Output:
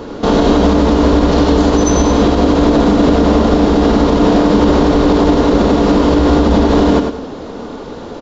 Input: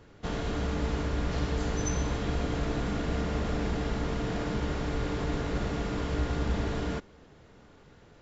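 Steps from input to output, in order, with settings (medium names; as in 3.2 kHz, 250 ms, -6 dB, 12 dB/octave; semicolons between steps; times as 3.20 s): graphic EQ 125/250/500/1000/2000/4000 Hz -6/+11/+7/+8/-5/+6 dB; compression, threshold -26 dBFS, peak gain reduction 7.5 dB; on a send: feedback delay 102 ms, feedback 25%, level -7.5 dB; on the sum: resampled via 16 kHz; loudness maximiser +21.5 dB; trim -1 dB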